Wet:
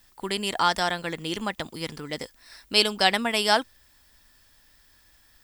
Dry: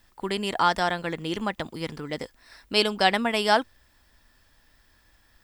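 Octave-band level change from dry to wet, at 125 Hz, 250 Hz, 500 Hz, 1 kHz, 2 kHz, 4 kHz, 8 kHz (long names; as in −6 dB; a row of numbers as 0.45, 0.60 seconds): −2.0, −2.0, −1.5, −1.5, +0.5, +3.5, +6.5 decibels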